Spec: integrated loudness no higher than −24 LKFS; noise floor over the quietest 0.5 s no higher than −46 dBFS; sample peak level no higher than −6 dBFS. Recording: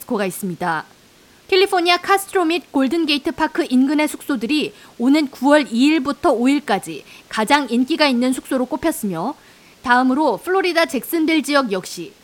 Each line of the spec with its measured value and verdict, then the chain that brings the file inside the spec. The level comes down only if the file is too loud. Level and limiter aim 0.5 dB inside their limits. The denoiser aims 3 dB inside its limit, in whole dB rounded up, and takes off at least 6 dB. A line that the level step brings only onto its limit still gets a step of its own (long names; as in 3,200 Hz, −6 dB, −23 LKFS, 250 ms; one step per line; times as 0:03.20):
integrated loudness −18.0 LKFS: out of spec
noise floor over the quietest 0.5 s −50 dBFS: in spec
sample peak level −1.5 dBFS: out of spec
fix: level −6.5 dB